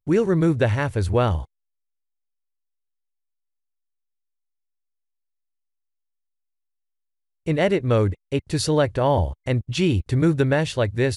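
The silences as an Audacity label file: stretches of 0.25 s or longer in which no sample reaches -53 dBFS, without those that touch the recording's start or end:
1.450000	7.460000	silence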